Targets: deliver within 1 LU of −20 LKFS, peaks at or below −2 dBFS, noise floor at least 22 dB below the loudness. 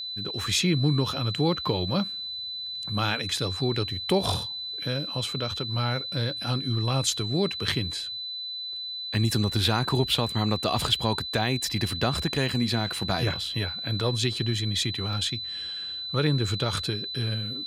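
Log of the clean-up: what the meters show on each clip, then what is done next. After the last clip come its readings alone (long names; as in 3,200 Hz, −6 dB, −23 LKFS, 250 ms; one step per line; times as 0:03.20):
number of dropouts 1; longest dropout 1.2 ms; interfering tone 4,000 Hz; level of the tone −32 dBFS; integrated loudness −27.0 LKFS; sample peak −10.0 dBFS; target loudness −20.0 LKFS
→ repair the gap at 0:15.13, 1.2 ms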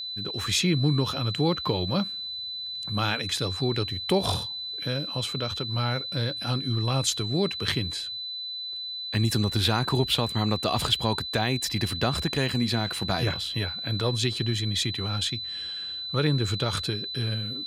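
number of dropouts 0; interfering tone 4,000 Hz; level of the tone −32 dBFS
→ notch filter 4,000 Hz, Q 30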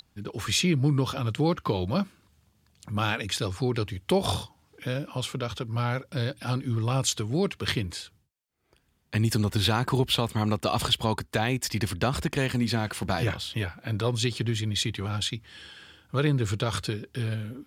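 interfering tone none found; integrated loudness −28.0 LKFS; sample peak −10.5 dBFS; target loudness −20.0 LKFS
→ level +8 dB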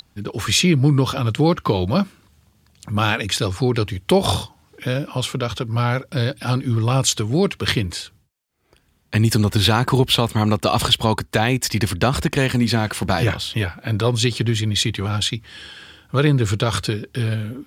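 integrated loudness −20.0 LKFS; sample peak −2.5 dBFS; background noise floor −60 dBFS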